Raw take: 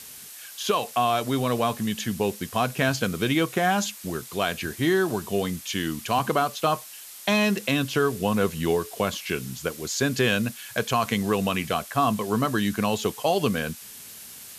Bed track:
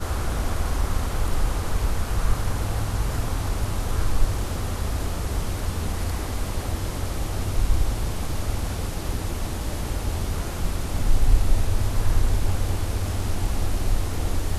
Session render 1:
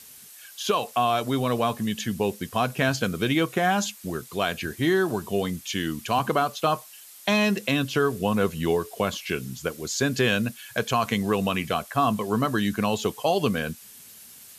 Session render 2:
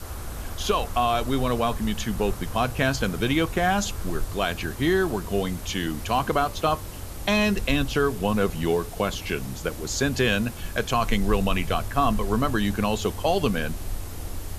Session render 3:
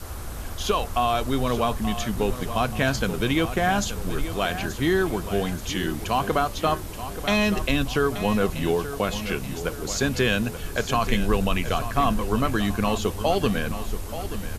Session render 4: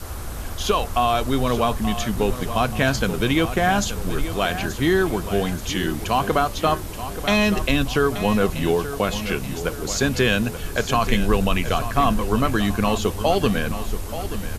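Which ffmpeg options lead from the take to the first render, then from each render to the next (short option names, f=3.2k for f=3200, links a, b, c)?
-af "afftdn=nr=6:nf=-43"
-filter_complex "[1:a]volume=-9dB[a];[0:a][a]amix=inputs=2:normalize=0"
-af "aecho=1:1:880|1760|2640|3520|4400:0.251|0.118|0.0555|0.0261|0.0123"
-af "volume=3dB"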